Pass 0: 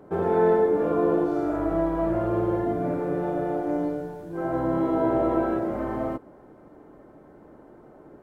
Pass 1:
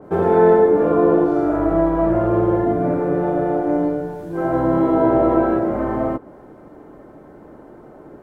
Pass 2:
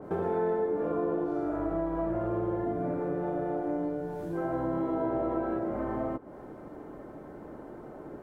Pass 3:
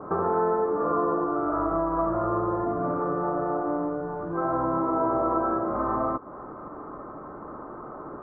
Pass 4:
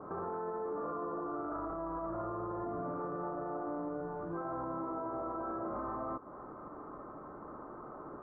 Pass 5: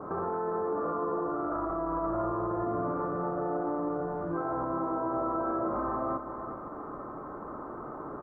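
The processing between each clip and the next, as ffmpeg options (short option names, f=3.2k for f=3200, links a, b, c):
-af "adynamicequalizer=threshold=0.00501:dfrequency=2500:dqfactor=0.7:tfrequency=2500:tqfactor=0.7:attack=5:release=100:ratio=0.375:range=3.5:mode=cutabove:tftype=highshelf,volume=7.5dB"
-af "acompressor=threshold=-31dB:ratio=2.5,volume=-2.5dB"
-af "lowpass=f=1.2k:t=q:w=9.2,volume=2dB"
-af "alimiter=limit=-23.5dB:level=0:latency=1:release=11,volume=-8dB"
-af "aecho=1:1:406:0.355,volume=6.5dB"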